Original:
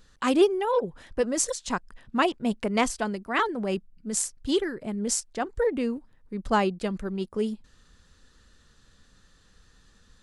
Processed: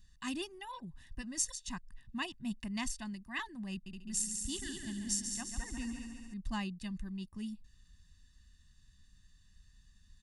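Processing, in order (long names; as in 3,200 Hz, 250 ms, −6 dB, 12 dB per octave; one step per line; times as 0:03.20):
guitar amp tone stack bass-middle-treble 6-0-2
comb filter 1.1 ms, depth 97%
0:03.72–0:06.34: echo machine with several playback heads 70 ms, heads second and third, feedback 59%, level −7 dB
level +4.5 dB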